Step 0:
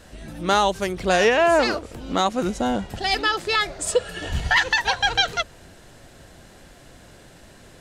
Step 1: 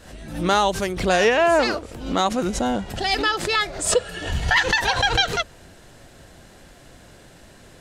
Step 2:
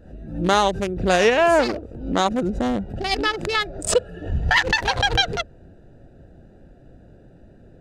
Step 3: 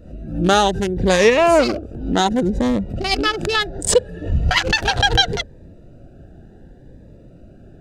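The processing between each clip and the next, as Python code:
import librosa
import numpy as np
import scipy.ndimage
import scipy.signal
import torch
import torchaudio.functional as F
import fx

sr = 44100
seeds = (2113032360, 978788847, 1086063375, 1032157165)

y1 = fx.pre_swell(x, sr, db_per_s=86.0)
y2 = fx.wiener(y1, sr, points=41)
y2 = F.gain(torch.from_numpy(y2), 2.0).numpy()
y3 = fx.notch_cascade(y2, sr, direction='rising', hz=0.69)
y3 = F.gain(torch.from_numpy(y3), 5.0).numpy()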